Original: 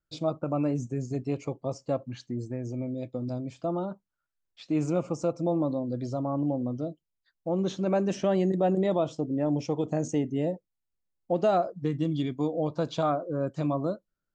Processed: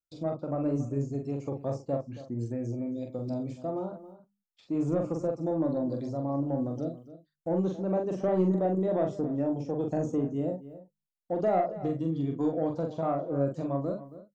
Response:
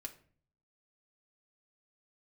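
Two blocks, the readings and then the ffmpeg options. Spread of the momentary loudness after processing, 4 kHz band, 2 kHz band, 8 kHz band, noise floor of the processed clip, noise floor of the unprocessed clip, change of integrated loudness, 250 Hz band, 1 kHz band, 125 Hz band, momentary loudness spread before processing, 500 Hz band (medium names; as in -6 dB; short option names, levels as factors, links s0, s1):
8 LU, under -10 dB, -6.0 dB, under -10 dB, -85 dBFS, -84 dBFS, -1.5 dB, -1.0 dB, -2.5 dB, -1.5 dB, 9 LU, -1.5 dB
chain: -filter_complex "[0:a]bandreject=f=50:t=h:w=6,bandreject=f=100:t=h:w=6,bandreject=f=150:t=h:w=6,bandreject=f=200:t=h:w=6,agate=range=0.158:threshold=0.00178:ratio=16:detection=peak,highshelf=f=4800:g=11,acrossover=split=1200[s0][s1];[s1]acompressor=threshold=0.00112:ratio=6[s2];[s0][s2]amix=inputs=2:normalize=0,tremolo=f=1.2:d=0.37,asoftclip=type=tanh:threshold=0.126,asplit=2[s3][s4];[s4]adelay=43,volume=0.596[s5];[s3][s5]amix=inputs=2:normalize=0,asplit=2[s6][s7];[s7]adelay=274.1,volume=0.178,highshelf=f=4000:g=-6.17[s8];[s6][s8]amix=inputs=2:normalize=0"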